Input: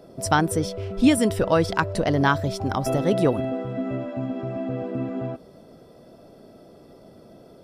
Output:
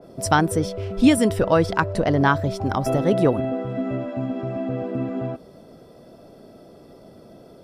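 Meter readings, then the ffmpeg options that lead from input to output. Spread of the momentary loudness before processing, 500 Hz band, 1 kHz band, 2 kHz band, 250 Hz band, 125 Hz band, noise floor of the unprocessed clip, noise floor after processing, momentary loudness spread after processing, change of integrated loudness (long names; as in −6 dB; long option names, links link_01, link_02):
9 LU, +2.0 dB, +2.0 dB, +1.5 dB, +2.0 dB, +2.0 dB, −50 dBFS, −48 dBFS, 9 LU, +2.0 dB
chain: -af "adynamicequalizer=threshold=0.0112:dfrequency=2600:dqfactor=0.7:tfrequency=2600:tqfactor=0.7:attack=5:release=100:ratio=0.375:range=3:mode=cutabove:tftype=highshelf,volume=2dB"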